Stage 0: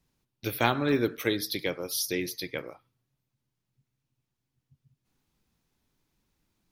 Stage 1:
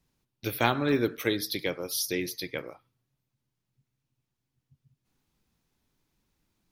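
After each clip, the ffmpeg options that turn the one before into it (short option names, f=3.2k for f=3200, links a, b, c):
-af anull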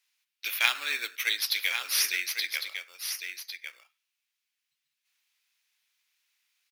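-filter_complex "[0:a]asplit=2[a][b];[b]acrusher=samples=11:mix=1:aa=0.000001,volume=-7.5dB[c];[a][c]amix=inputs=2:normalize=0,highpass=f=2.4k:t=q:w=1.8,aecho=1:1:1103:0.398,volume=3dB"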